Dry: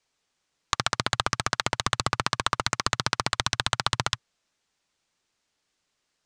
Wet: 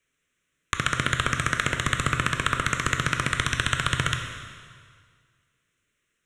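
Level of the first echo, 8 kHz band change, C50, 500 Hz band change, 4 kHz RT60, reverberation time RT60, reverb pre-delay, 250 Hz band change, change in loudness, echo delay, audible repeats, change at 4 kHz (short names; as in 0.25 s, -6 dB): none, -0.5 dB, 6.0 dB, 0.0 dB, 1.8 s, 1.9 s, 6 ms, +5.0 dB, +1.5 dB, none, none, -2.0 dB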